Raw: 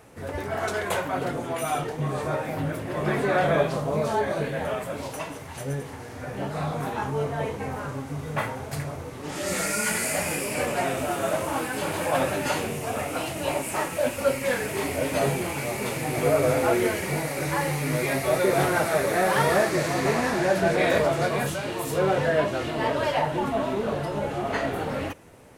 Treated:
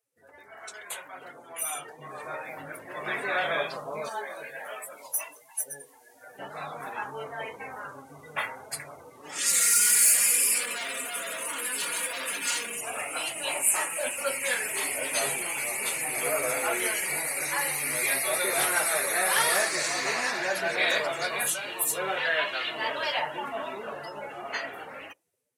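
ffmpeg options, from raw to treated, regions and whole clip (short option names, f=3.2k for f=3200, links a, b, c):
-filter_complex "[0:a]asettb=1/sr,asplit=3[a][b][c];[a]atrim=end=4.094[d];[b]atrim=start=4.09:end=6.39,asetpts=PTS-STARTPTS,afade=t=in:d=0.004:c=qsin,afade=t=out:st=2.296:d=0.004:c=qsin,highpass=f=360:p=1,highshelf=f=9.2k:g=11,flanger=delay=18:depth=3.8:speed=1.4[e];[c]atrim=start=6.386[f];[d][e]acrossfade=d=0.004:c1=hsin:c2=qsin[g];[g][f]acrossfade=d=0.004:c1=qsin:c2=hsin,asettb=1/sr,asplit=3[h][i][j];[h]atrim=end=9.384[k];[i]atrim=start=9.38:end=12.81,asetpts=PTS-STARTPTS,afade=t=in:d=0.004:c=qsin,afade=t=out:st=3.426:d=0.004:c=qsin,aecho=1:1:4.2:0.96,atrim=end_sample=151263,volume=27.5dB,asoftclip=hard,volume=-27.5dB,equalizer=f=770:w=5.5:g=-11.5[l];[j]atrim=start=12.806[m];[k][l]acrossfade=d=0.004:c1=hsin:c2=qsin[n];[n][m]acrossfade=d=0.004:c1=qsin:c2=hsin,asettb=1/sr,asplit=3[o][p][q];[o]atrim=end=22.174[r];[p]atrim=start=22.17:end=22.7,asetpts=PTS-STARTPTS,afade=t=in:d=0.004:c=qsin,afade=t=out:st=0.526:d=0.004:c=qsin,acrossover=split=4600[s][t];[t]acompressor=threshold=-55dB:ratio=4:attack=1:release=60[u];[s][u]amix=inputs=2:normalize=0,tiltshelf=f=770:g=-5.5[v];[q]atrim=start=22.696[w];[r][v]acrossfade=d=0.004:c1=hsin:c2=qsin[x];[x][w]acrossfade=d=0.004:c1=qsin:c2=hsin,afftdn=nr=24:nf=-39,aderivative,dynaudnorm=f=790:g=5:m=13dB"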